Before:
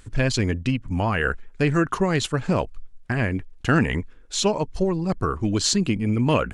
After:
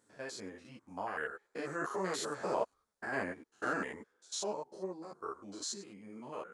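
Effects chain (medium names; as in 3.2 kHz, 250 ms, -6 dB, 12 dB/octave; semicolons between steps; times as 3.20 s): spectrogram pixelated in time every 100 ms; Doppler pass-by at 2.77 s, 5 m/s, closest 3.9 m; high-pass 480 Hz 12 dB/octave; peaking EQ 2.7 kHz -13.5 dB 0.83 oct; three-phase chorus; trim +1.5 dB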